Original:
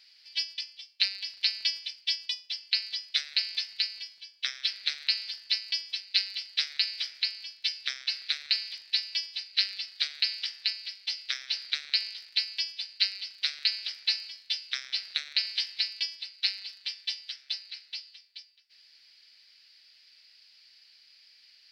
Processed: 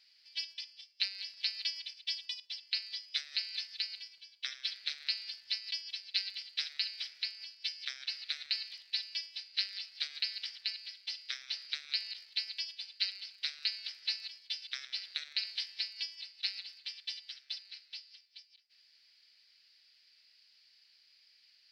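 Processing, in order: reverse delay 0.102 s, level -11 dB; gain -7.5 dB

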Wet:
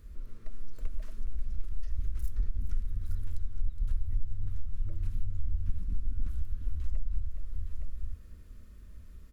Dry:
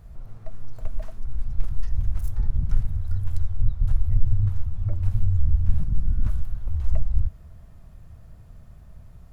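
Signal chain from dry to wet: tapped delay 0.417/0.865 s -12.5/-11 dB; compressor 3:1, threshold -23 dBFS, peak gain reduction 12 dB; fixed phaser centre 310 Hz, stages 4; gain -1 dB

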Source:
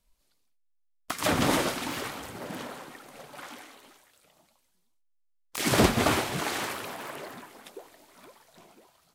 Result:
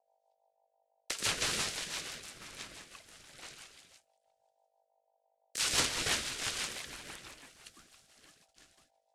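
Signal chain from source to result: gate -57 dBFS, range -20 dB; weighting filter ITU-R 468; hum 50 Hz, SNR 35 dB; ring modulator 720 Hz; rotary speaker horn 6 Hz; gain -5.5 dB

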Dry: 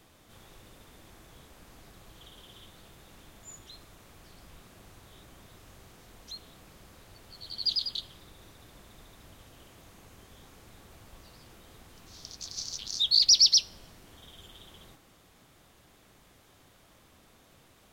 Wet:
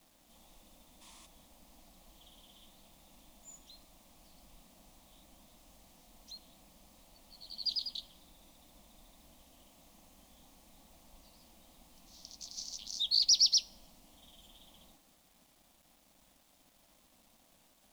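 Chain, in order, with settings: spectral gain 1.02–1.26, 890–11000 Hz +10 dB; fixed phaser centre 410 Hz, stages 6; bit-crush 10-bit; gain -5 dB

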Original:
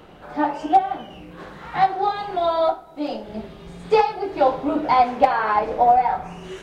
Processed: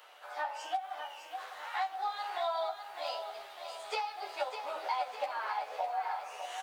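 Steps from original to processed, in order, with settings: HPF 610 Hz 24 dB/oct; tilt +2.5 dB/oct; compressor 20:1, threshold -25 dBFS, peak gain reduction 15 dB; doubler 12 ms -2.5 dB; lo-fi delay 0.604 s, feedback 55%, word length 9-bit, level -8 dB; gain -8.5 dB

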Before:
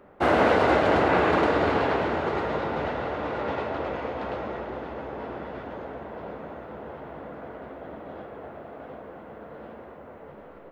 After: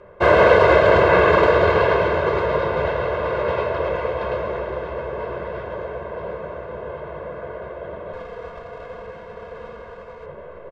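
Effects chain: 8.13–10.26 minimum comb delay 4.2 ms; air absorption 77 m; comb 1.9 ms, depth 96%; gain +4.5 dB

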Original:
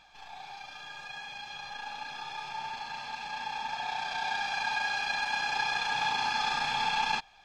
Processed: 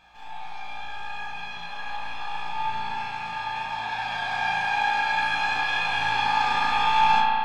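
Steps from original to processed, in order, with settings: bell 5200 Hz -7 dB 1.3 oct; on a send: flutter echo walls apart 3.1 m, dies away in 0.33 s; on the sum: spring tank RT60 2.5 s, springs 35 ms, chirp 65 ms, DRR -3.5 dB; gain +1.5 dB

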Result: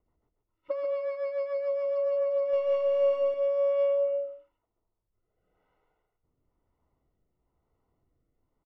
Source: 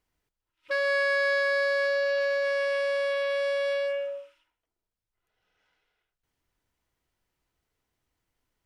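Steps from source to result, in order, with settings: compressor, threshold -32 dBFS, peak gain reduction 9.5 dB; 2.53–3.34 sample leveller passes 2; rotary speaker horn 7 Hz, later 1 Hz, at 2.33; polynomial smoothing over 65 samples; echo 0.139 s -5.5 dB; gain +7.5 dB

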